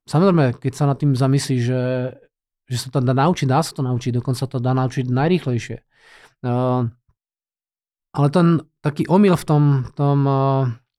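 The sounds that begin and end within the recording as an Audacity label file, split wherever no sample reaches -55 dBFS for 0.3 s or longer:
2.680000	7.110000	sound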